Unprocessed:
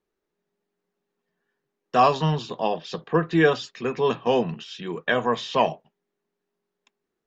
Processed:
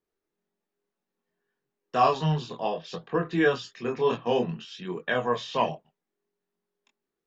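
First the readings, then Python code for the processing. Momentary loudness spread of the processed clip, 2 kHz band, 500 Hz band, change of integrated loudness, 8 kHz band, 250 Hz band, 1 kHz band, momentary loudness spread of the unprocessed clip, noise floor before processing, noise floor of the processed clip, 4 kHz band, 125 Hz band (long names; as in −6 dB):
11 LU, −4.0 dB, −3.5 dB, −4.0 dB, can't be measured, −4.0 dB, −4.0 dB, 11 LU, −82 dBFS, below −85 dBFS, −4.5 dB, −3.0 dB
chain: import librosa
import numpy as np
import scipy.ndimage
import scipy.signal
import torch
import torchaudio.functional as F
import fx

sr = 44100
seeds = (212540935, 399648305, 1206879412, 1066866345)

y = fx.chorus_voices(x, sr, voices=2, hz=0.61, base_ms=24, depth_ms=2.0, mix_pct=40)
y = F.gain(torch.from_numpy(y), -1.5).numpy()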